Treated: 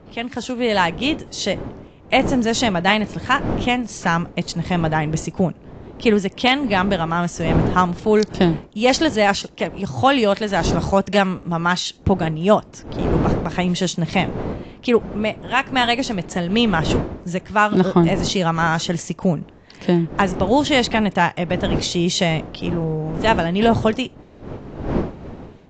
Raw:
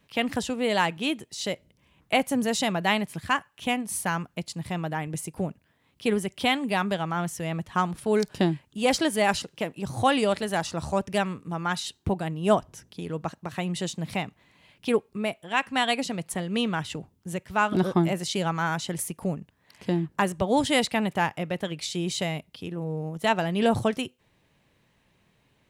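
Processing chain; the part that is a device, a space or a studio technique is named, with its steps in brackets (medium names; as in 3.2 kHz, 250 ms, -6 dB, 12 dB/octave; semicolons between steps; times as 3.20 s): smartphone video outdoors (wind noise 370 Hz -37 dBFS; level rider gain up to 12 dB; trim -1 dB; AAC 48 kbps 16 kHz)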